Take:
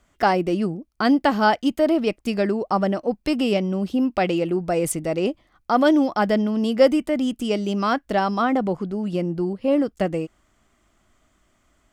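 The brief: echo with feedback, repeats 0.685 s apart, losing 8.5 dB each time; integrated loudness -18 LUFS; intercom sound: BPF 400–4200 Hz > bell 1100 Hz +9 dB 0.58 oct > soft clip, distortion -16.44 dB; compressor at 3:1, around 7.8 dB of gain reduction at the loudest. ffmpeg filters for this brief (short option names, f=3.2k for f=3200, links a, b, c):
-af "acompressor=threshold=-20dB:ratio=3,highpass=400,lowpass=4.2k,equalizer=f=1.1k:t=o:w=0.58:g=9,aecho=1:1:685|1370|2055|2740:0.376|0.143|0.0543|0.0206,asoftclip=threshold=-13.5dB,volume=9dB"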